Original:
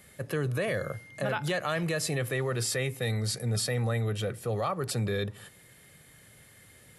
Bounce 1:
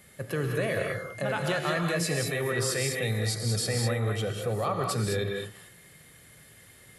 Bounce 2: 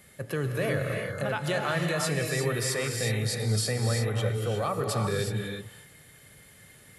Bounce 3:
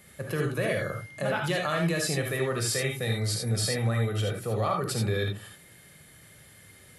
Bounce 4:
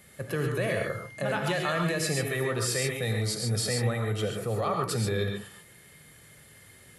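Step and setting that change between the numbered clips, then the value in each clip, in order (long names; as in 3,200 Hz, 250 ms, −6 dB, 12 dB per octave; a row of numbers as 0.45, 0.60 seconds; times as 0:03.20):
reverb whose tail is shaped and stops, gate: 230, 390, 100, 160 milliseconds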